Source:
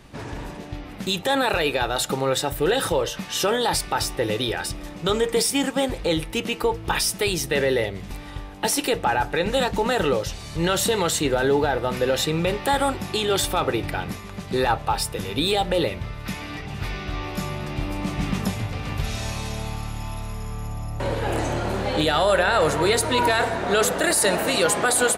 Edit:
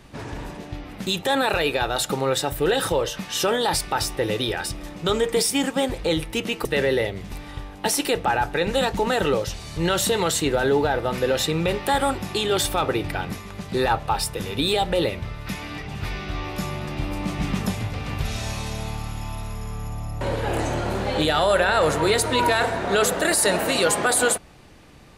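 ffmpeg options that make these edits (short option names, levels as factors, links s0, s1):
-filter_complex "[0:a]asplit=2[s0][s1];[s0]atrim=end=6.652[s2];[s1]atrim=start=7.438[s3];[s2][s3]acrossfade=d=0.004:c1=hsin:c2=hsin"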